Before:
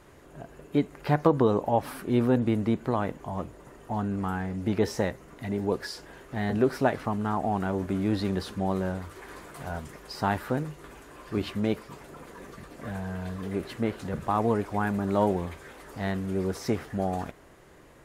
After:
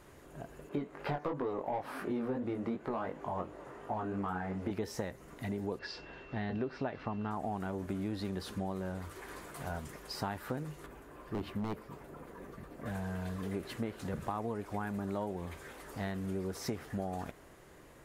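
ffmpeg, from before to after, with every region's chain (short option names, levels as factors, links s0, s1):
-filter_complex "[0:a]asettb=1/sr,asplit=3[s0][s1][s2];[s0]atrim=end=0.694[s3];[s1]atrim=start=0.69:end=4.71,asetpts=PTS-STARTPTS,afade=t=in:d=0.004:c=qsin,afade=t=out:st=4.016:d=0.004:c=qsin,asplit=2[s4][s5];[s5]highpass=f=720:p=1,volume=8.91,asoftclip=type=tanh:threshold=0.447[s6];[s4][s6]amix=inputs=2:normalize=0,lowpass=f=1000:p=1,volume=0.501,flanger=delay=19.5:depth=3.4:speed=2.8[s7];[s2]atrim=start=4.706[s8];[s3][s7]acrossfade=d=0.004:c1=hsin:c2=qsin[s9];[s9][s8]acrossfade=d=0.004:c1=qsin:c2=hsin,asettb=1/sr,asplit=3[s10][s11][s12];[s10]atrim=end=5.794[s13];[s11]atrim=start=5.79:end=7.31,asetpts=PTS-STARTPTS,afade=t=in:d=0.004:c=qsin,afade=t=out:st=1.516:d=0.004:c=qsin,lowpass=f=4700:w=0.5412,lowpass=f=4700:w=1.3066,aeval=exprs='val(0)+0.00224*sin(2*PI*2700*n/s)':c=same[s14];[s12]atrim=start=7.306[s15];[s13][s14]acrossfade=d=0.004:c1=hsin:c2=qsin[s16];[s16][s15]acrossfade=d=0.004:c1=qsin:c2=hsin,asettb=1/sr,asplit=3[s17][s18][s19];[s17]atrim=end=10.864[s20];[s18]atrim=start=10.86:end=12.86,asetpts=PTS-STARTPTS,afade=t=in:d=0.004:c=qsin,afade=t=out:st=1.996:d=0.004:c=qsin,equalizer=f=6500:w=0.33:g=-11,aeval=exprs='0.075*(abs(mod(val(0)/0.075+3,4)-2)-1)':c=same[s21];[s19]atrim=start=12.856[s22];[s20][s21]acrossfade=d=0.004:c1=hsin:c2=qsin[s23];[s23][s22]acrossfade=d=0.004:c1=qsin:c2=hsin,highshelf=f=9300:g=5,acompressor=threshold=0.0316:ratio=6,volume=0.708"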